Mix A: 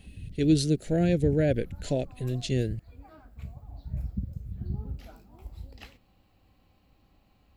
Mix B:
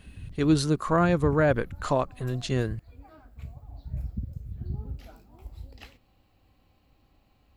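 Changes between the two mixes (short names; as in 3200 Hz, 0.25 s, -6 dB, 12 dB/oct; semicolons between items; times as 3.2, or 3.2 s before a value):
speech: remove Butterworth band-stop 1100 Hz, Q 0.7; background: add bell 190 Hz -6 dB 0.2 oct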